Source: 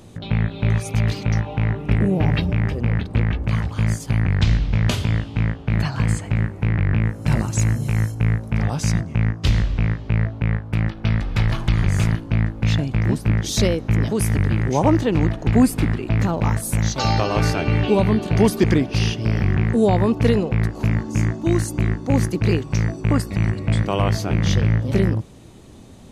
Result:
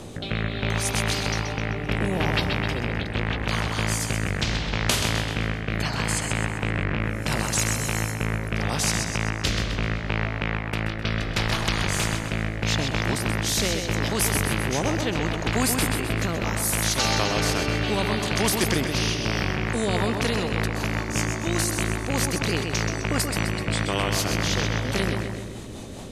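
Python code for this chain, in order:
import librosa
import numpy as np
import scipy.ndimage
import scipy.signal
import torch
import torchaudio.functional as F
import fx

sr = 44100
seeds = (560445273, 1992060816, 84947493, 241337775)

p1 = fx.rotary_switch(x, sr, hz=0.75, then_hz=5.0, switch_at_s=19.09)
p2 = p1 + fx.echo_feedback(p1, sr, ms=129, feedback_pct=45, wet_db=-9, dry=0)
y = fx.spectral_comp(p2, sr, ratio=2.0)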